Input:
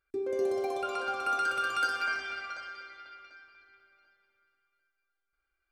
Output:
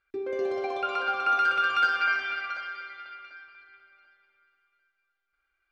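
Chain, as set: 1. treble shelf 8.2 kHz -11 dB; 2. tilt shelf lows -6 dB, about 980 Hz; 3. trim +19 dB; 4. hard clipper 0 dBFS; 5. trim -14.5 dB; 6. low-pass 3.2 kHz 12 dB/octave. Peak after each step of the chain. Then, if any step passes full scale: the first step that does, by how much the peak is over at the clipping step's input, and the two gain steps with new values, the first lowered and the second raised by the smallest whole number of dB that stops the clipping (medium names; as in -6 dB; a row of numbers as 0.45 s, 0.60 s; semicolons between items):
-18.5 dBFS, -15.5 dBFS, +3.5 dBFS, 0.0 dBFS, -14.5 dBFS, -14.0 dBFS; step 3, 3.5 dB; step 3 +15 dB, step 5 -10.5 dB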